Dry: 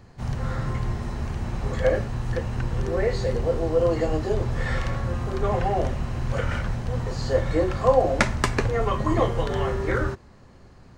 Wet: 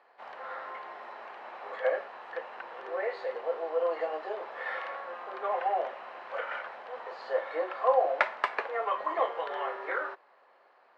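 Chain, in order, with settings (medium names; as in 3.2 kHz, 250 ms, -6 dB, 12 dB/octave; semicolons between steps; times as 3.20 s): high-pass 590 Hz 24 dB/octave; distance through air 430 m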